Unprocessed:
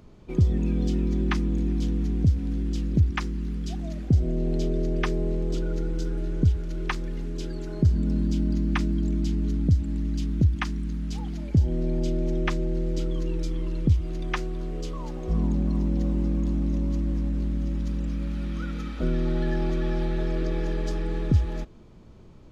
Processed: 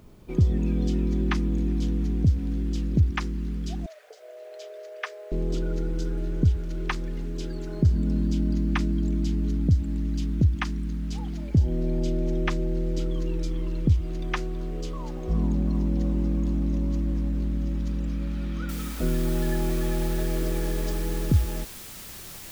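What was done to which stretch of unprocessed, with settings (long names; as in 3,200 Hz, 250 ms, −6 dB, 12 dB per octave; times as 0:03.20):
0:03.86–0:05.32: Chebyshev high-pass with heavy ripple 430 Hz, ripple 6 dB
0:18.69: noise floor change −70 dB −42 dB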